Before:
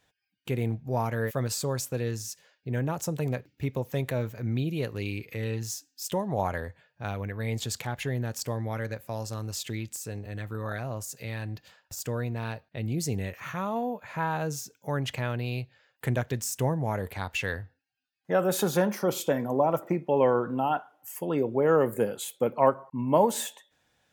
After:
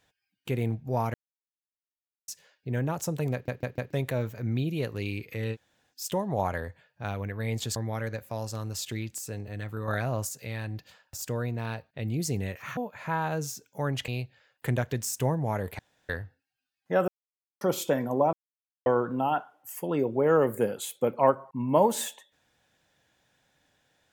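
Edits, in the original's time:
0:01.14–0:02.28: silence
0:03.33: stutter in place 0.15 s, 4 plays
0:05.54–0:05.92: fill with room tone, crossfade 0.06 s
0:07.76–0:08.54: remove
0:10.66–0:11.07: clip gain +4.5 dB
0:13.55–0:13.86: remove
0:15.17–0:15.47: remove
0:17.18–0:17.48: fill with room tone
0:18.47–0:19.00: silence
0:19.72–0:20.25: silence

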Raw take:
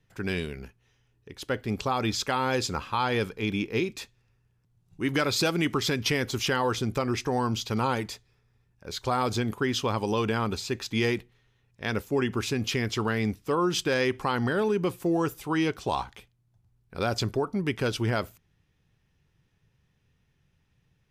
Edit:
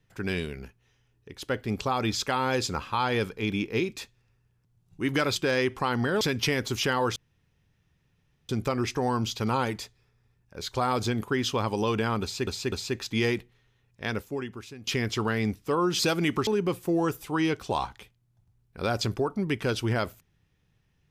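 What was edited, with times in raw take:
0:05.36–0:05.84: swap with 0:13.79–0:14.64
0:06.79: splice in room tone 1.33 s
0:10.52–0:10.77: repeat, 3 plays
0:11.84–0:12.67: fade out quadratic, to −16.5 dB

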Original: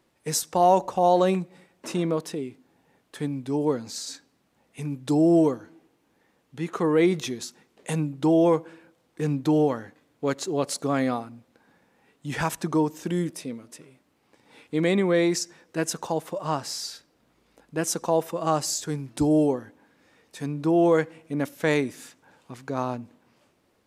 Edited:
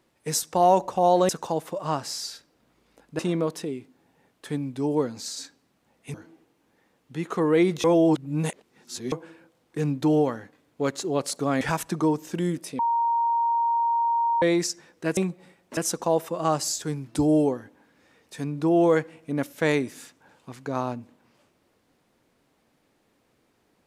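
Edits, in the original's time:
0:01.29–0:01.89: swap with 0:15.89–0:17.79
0:04.84–0:05.57: remove
0:07.27–0:08.55: reverse
0:11.04–0:12.33: remove
0:13.51–0:15.14: beep over 932 Hz −20 dBFS

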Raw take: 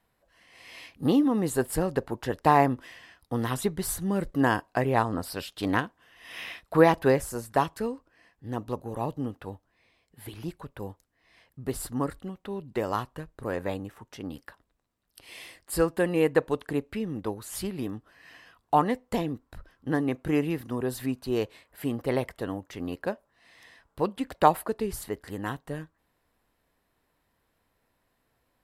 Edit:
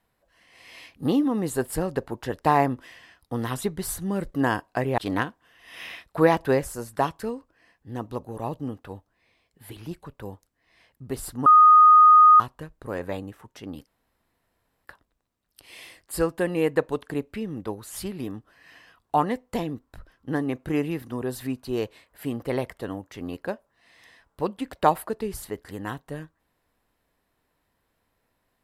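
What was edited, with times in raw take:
0:04.98–0:05.55: remove
0:12.03–0:12.97: beep over 1,240 Hz −9.5 dBFS
0:14.44: splice in room tone 0.98 s

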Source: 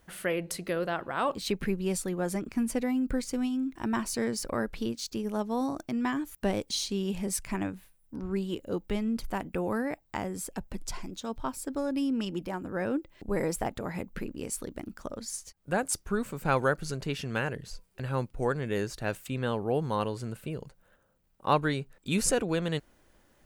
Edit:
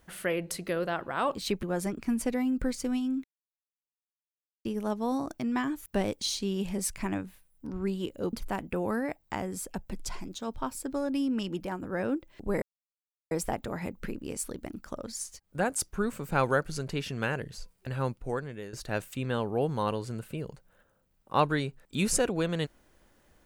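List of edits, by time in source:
0:01.63–0:02.12: remove
0:03.73–0:05.14: silence
0:08.82–0:09.15: remove
0:13.44: splice in silence 0.69 s
0:18.17–0:18.86: fade out, to −15.5 dB

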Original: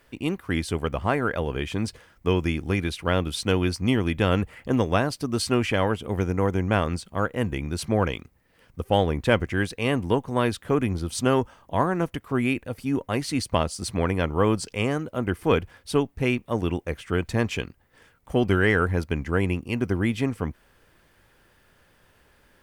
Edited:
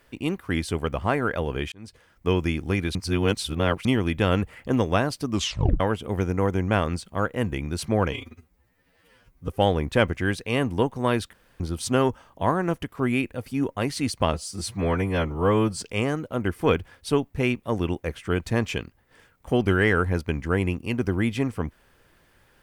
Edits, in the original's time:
0:01.72–0:02.31: fade in
0:02.95–0:03.85: reverse
0:05.30: tape stop 0.50 s
0:08.12–0:08.80: time-stretch 2×
0:10.65–0:10.92: fill with room tone
0:13.65–0:14.64: time-stretch 1.5×

